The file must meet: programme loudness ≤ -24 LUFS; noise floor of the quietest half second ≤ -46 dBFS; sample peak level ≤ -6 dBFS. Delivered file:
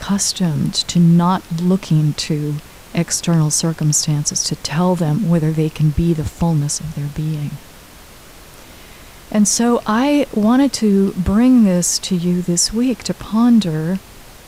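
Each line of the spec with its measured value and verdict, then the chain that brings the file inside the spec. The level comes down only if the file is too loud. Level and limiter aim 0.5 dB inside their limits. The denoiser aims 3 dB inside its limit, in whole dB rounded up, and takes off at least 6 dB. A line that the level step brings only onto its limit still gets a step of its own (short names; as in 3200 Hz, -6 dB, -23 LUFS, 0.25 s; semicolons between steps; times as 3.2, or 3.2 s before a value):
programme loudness -16.5 LUFS: fail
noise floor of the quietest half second -40 dBFS: fail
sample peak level -5.5 dBFS: fail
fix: gain -8 dB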